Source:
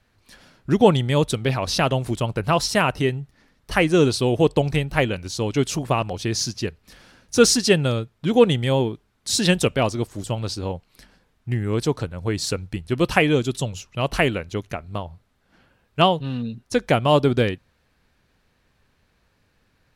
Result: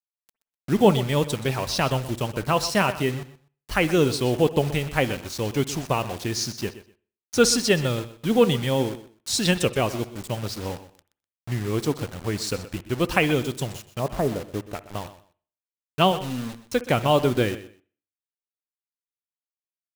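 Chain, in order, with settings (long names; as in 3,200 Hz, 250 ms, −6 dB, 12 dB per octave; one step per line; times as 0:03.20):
0:13.99–0:14.75: low-pass filter 1,100 Hz 24 dB per octave
in parallel at −4 dB: dead-zone distortion −34 dBFS
on the sum: flanger 0.53 Hz, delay 0.7 ms, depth 4.6 ms, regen +75%
bit reduction 6 bits
repeating echo 125 ms, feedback 19%, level −15 dB
on a send at −18 dB: convolution reverb, pre-delay 55 ms
on the sum: level −2 dB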